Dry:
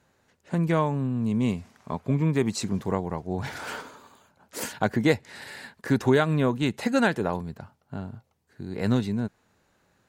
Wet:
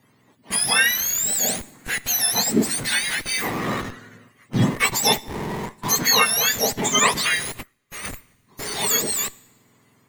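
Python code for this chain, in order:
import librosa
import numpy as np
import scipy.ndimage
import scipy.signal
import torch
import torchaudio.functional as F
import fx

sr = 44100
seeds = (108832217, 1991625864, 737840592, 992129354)

p1 = fx.octave_mirror(x, sr, pivot_hz=1300.0)
p2 = fx.schmitt(p1, sr, flips_db=-40.0)
p3 = p1 + F.gain(torch.from_numpy(p2), -7.5).numpy()
p4 = fx.peak_eq(p3, sr, hz=2000.0, db=6.5, octaves=0.46)
p5 = fx.rev_double_slope(p4, sr, seeds[0], early_s=0.9, late_s=3.3, knee_db=-22, drr_db=20.0)
p6 = fx.upward_expand(p5, sr, threshold_db=-49.0, expansion=1.5, at=(7.61, 8.03), fade=0.02)
y = F.gain(torch.from_numpy(p6), 7.0).numpy()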